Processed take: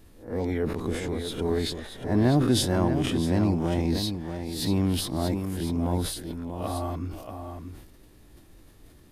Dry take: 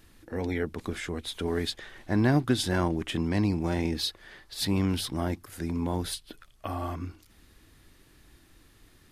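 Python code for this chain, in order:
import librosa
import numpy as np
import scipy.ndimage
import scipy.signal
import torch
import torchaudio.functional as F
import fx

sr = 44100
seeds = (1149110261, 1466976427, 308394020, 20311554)

p1 = fx.spec_swells(x, sr, rise_s=0.34)
p2 = fx.high_shelf(p1, sr, hz=2900.0, db=-10.5)
p3 = 10.0 ** (-26.0 / 20.0) * np.tanh(p2 / 10.0 ** (-26.0 / 20.0))
p4 = p2 + (p3 * 10.0 ** (-9.0 / 20.0))
p5 = fx.curve_eq(p4, sr, hz=(350.0, 590.0, 1000.0, 1500.0, 12000.0), db=(0, 2, -2, -6, 7))
p6 = p5 + fx.echo_single(p5, sr, ms=635, db=-7.5, dry=0)
y = fx.sustainer(p6, sr, db_per_s=63.0)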